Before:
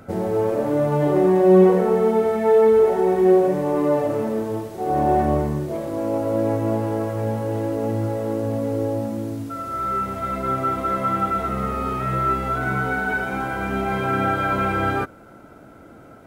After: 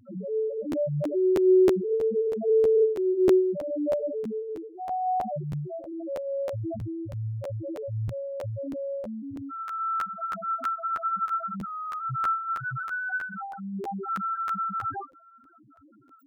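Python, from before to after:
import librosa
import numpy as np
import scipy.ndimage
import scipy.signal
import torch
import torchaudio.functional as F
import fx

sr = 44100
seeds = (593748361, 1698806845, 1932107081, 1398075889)

y = x + 0.5 * 10.0 ** (-22.0 / 20.0) * np.diff(np.sign(x), prepend=np.sign(x[:1]))
y = fx.fixed_phaser(y, sr, hz=620.0, stages=8, at=(10.57, 11.09))
y = fx.spec_topn(y, sr, count=1)
y = fx.buffer_crackle(y, sr, first_s=0.71, period_s=0.32, block=512, kind='repeat')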